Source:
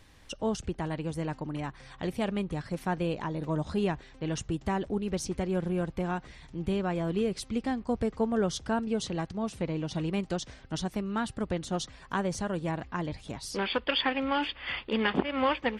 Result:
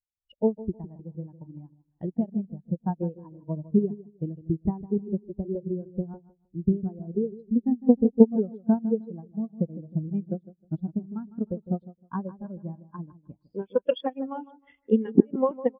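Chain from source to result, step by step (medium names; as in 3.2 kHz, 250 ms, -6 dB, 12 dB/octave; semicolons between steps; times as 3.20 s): dynamic bell 1.9 kHz, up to -4 dB, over -43 dBFS, Q 0.74; transient shaper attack +10 dB, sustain -6 dB; on a send: bucket-brigade echo 155 ms, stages 2048, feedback 51%, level -7 dB; on the sum: resampled via 11.025 kHz; spectral contrast expander 2.5:1; trim +1.5 dB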